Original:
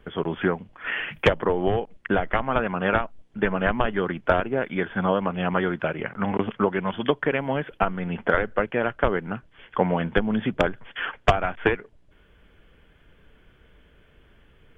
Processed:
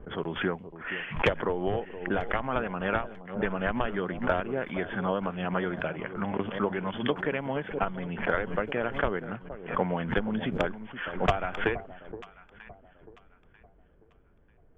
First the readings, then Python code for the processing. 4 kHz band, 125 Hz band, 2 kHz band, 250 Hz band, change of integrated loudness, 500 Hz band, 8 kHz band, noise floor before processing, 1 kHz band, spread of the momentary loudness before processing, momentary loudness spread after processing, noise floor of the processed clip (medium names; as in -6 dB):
-5.0 dB, -5.5 dB, -5.0 dB, -5.0 dB, -5.5 dB, -6.0 dB, no reading, -57 dBFS, -5.5 dB, 6 LU, 9 LU, -60 dBFS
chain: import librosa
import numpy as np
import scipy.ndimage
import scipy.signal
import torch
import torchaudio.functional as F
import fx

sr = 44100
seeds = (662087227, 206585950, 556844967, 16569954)

y = fx.env_lowpass(x, sr, base_hz=810.0, full_db=-21.0)
y = fx.echo_alternate(y, sr, ms=471, hz=890.0, feedback_pct=53, wet_db=-12.5)
y = fx.pre_swell(y, sr, db_per_s=110.0)
y = y * librosa.db_to_amplitude(-6.5)